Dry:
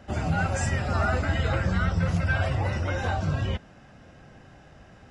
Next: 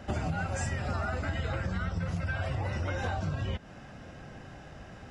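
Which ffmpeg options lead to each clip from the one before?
-af "acompressor=threshold=0.0251:ratio=12,volume=1.5"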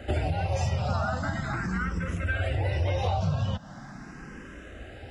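-filter_complex "[0:a]asplit=2[s0][s1];[s1]afreqshift=0.41[s2];[s0][s2]amix=inputs=2:normalize=1,volume=2.24"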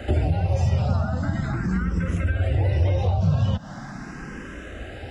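-filter_complex "[0:a]acrossover=split=470[s0][s1];[s1]acompressor=threshold=0.00794:ratio=6[s2];[s0][s2]amix=inputs=2:normalize=0,volume=2.24"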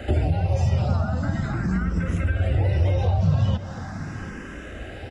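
-af "aecho=1:1:733:0.178"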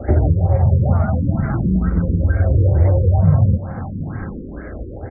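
-af "adynamicsmooth=sensitivity=2.5:basefreq=1400,afftfilt=real='re*lt(b*sr/1024,510*pow(2400/510,0.5+0.5*sin(2*PI*2.2*pts/sr)))':imag='im*lt(b*sr/1024,510*pow(2400/510,0.5+0.5*sin(2*PI*2.2*pts/sr)))':win_size=1024:overlap=0.75,volume=2.24"

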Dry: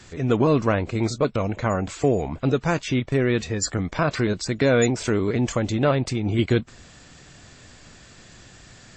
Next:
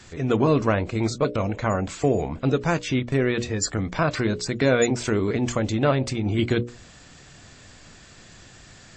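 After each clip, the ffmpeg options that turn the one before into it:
-af "bandreject=f=60:t=h:w=6,bandreject=f=120:t=h:w=6,bandreject=f=180:t=h:w=6,bandreject=f=240:t=h:w=6,bandreject=f=300:t=h:w=6,bandreject=f=360:t=h:w=6,bandreject=f=420:t=h:w=6,bandreject=f=480:t=h:w=6,bandreject=f=540:t=h:w=6,bandreject=f=600:t=h:w=6"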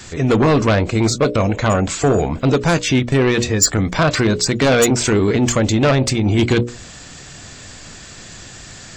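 -af "aeval=exprs='0.422*sin(PI/2*2.24*val(0)/0.422)':c=same,crystalizer=i=1:c=0,volume=0.841"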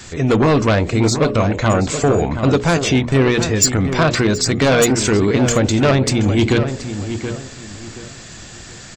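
-filter_complex "[0:a]asplit=2[s0][s1];[s1]adelay=726,lowpass=f=2600:p=1,volume=0.355,asplit=2[s2][s3];[s3]adelay=726,lowpass=f=2600:p=1,volume=0.3,asplit=2[s4][s5];[s5]adelay=726,lowpass=f=2600:p=1,volume=0.3[s6];[s0][s2][s4][s6]amix=inputs=4:normalize=0"

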